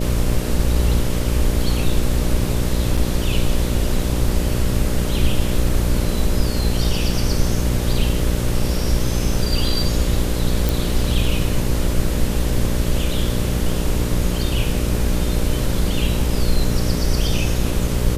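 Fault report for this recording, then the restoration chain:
mains buzz 60 Hz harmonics 10 −22 dBFS
0:02.97–0:02.98: drop-out 6.1 ms
0:10.69: click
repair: click removal
hum removal 60 Hz, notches 10
repair the gap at 0:02.97, 6.1 ms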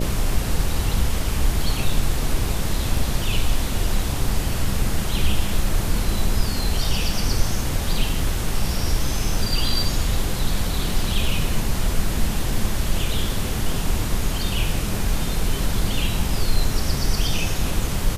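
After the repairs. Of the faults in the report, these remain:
none of them is left

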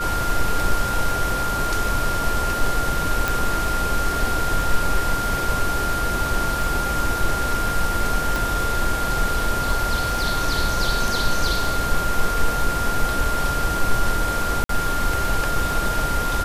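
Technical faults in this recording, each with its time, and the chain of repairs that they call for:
surface crackle 29 per second −28 dBFS
whistle 1,400 Hz −24 dBFS
0:03.28: click
0:08.36: click
0:14.64–0:14.69: drop-out 53 ms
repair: click removal
notch filter 1,400 Hz, Q 30
repair the gap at 0:14.64, 53 ms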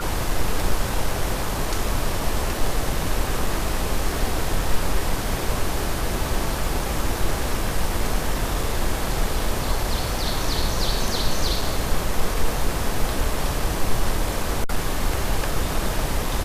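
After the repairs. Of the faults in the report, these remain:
0:08.36: click

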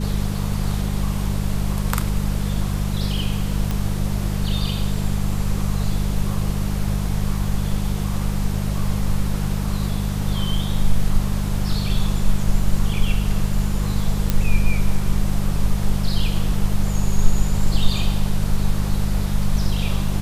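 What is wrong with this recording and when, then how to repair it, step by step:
mains hum 50 Hz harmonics 4 −23 dBFS
0:03.71: click
0:14.30: click −5 dBFS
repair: click removal
hum removal 50 Hz, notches 4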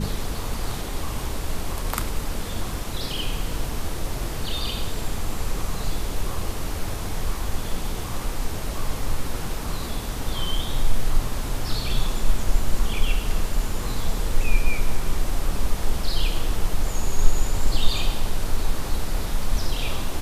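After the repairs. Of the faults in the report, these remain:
none of them is left

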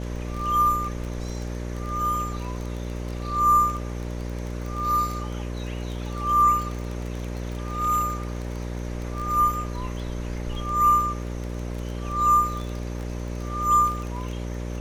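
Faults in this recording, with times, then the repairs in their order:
mains buzz 60 Hz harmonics 10 −31 dBFS
surface crackle 23 per second −29 dBFS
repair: click removal
hum removal 60 Hz, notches 10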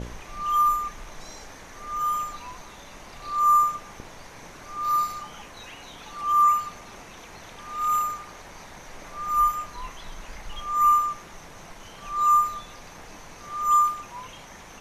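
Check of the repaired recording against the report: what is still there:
none of them is left

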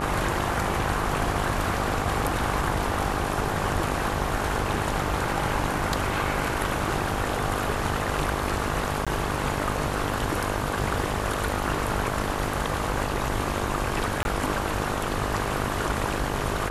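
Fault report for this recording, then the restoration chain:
mains buzz 50 Hz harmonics 24 −31 dBFS
0:09.05–0:09.07: drop-out 16 ms
0:14.23–0:14.25: drop-out 21 ms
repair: hum removal 50 Hz, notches 24
repair the gap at 0:09.05, 16 ms
repair the gap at 0:14.23, 21 ms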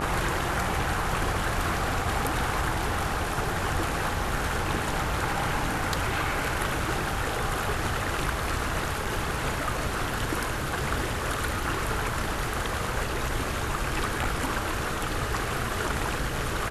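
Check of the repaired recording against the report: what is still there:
none of them is left

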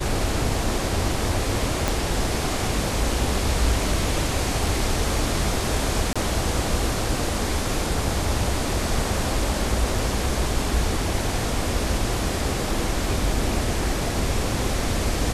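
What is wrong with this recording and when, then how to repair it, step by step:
0:01.88: click −6 dBFS
0:06.13–0:06.16: drop-out 26 ms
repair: click removal
repair the gap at 0:06.13, 26 ms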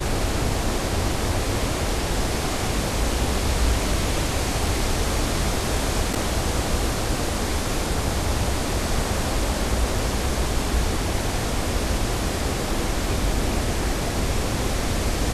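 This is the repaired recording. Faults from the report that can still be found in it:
0:01.88: click

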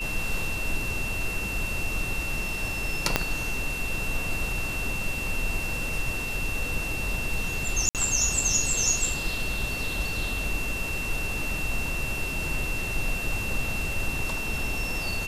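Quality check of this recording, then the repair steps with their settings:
whistle 2,700 Hz −31 dBFS
0:03.16: click −4 dBFS
0:07.89–0:07.95: drop-out 58 ms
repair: click removal
notch filter 2,700 Hz, Q 30
repair the gap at 0:07.89, 58 ms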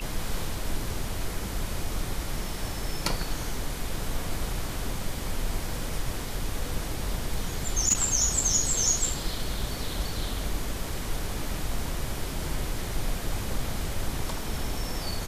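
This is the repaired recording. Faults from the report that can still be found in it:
0:03.16: click

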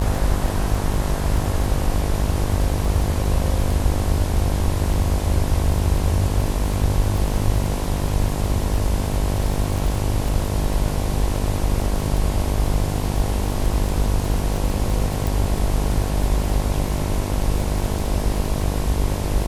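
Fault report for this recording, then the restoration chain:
mains buzz 50 Hz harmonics 22 −24 dBFS
surface crackle 20 per second −23 dBFS
0:15.27: click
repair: click removal
hum removal 50 Hz, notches 22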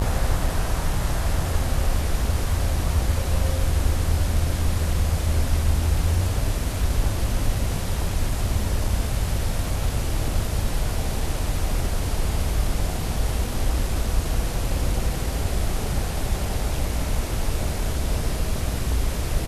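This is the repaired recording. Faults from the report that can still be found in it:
none of them is left

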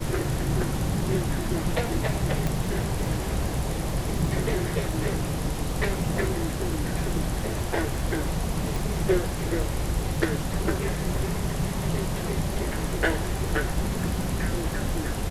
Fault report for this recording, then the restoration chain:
surface crackle 26 per second −34 dBFS
0:02.47: click
0:08.76: click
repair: click removal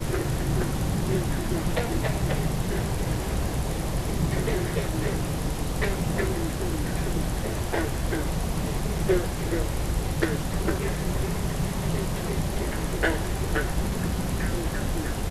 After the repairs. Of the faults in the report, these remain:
0:02.47: click

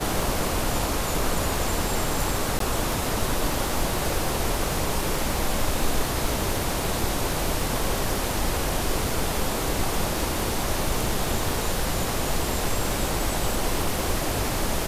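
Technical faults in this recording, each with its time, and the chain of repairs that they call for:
surface crackle 41 per second −28 dBFS
0:02.59–0:02.60: drop-out 13 ms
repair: click removal
repair the gap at 0:02.59, 13 ms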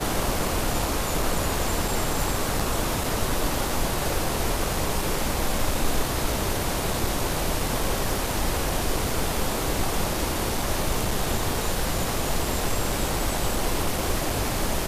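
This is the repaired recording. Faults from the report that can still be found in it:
none of them is left

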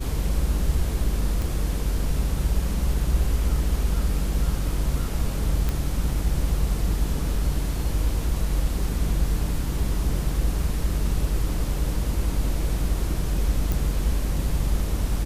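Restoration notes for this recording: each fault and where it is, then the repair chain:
0:01.42: click
0:05.69: click
0:13.72: click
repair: click removal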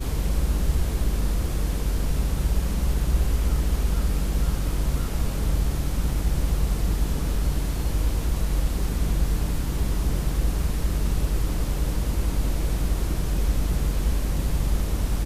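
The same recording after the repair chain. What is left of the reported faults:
none of them is left

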